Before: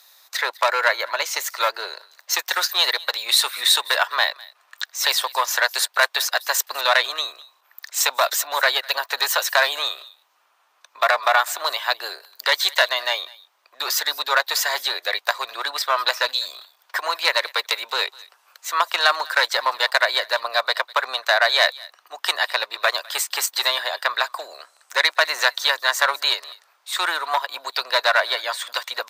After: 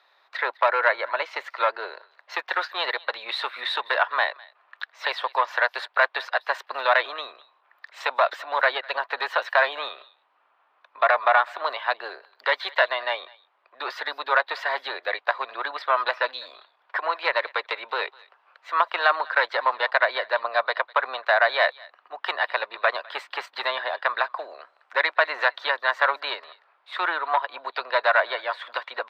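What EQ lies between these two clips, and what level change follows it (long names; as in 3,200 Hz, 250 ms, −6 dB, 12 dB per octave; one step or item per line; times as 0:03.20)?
high-frequency loss of the air 420 metres
high-shelf EQ 7,800 Hz −11 dB
+1.5 dB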